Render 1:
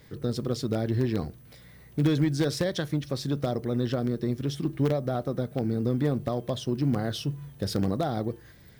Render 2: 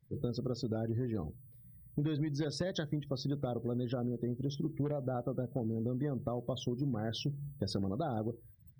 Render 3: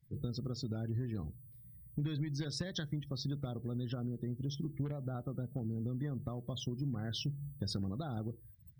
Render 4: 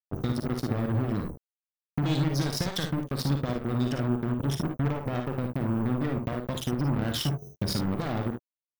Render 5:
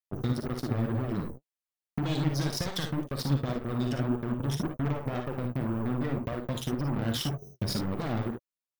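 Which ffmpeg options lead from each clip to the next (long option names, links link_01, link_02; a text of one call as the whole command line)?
ffmpeg -i in.wav -af "afftdn=noise_reduction=31:noise_floor=-39,acompressor=threshold=-32dB:ratio=5" out.wav
ffmpeg -i in.wav -af "equalizer=frequency=550:width=0.61:gain=-11.5,volume=1.5dB" out.wav
ffmpeg -i in.wav -filter_complex "[0:a]acrusher=bits=5:mix=0:aa=0.5,asplit=2[link_01][link_02];[link_02]aecho=0:1:44|57|73:0.299|0.473|0.282[link_03];[link_01][link_03]amix=inputs=2:normalize=0,volume=8dB" out.wav
ffmpeg -i in.wav -af "flanger=delay=1.6:depth=7.2:regen=50:speed=1.9:shape=sinusoidal,volume=2dB" out.wav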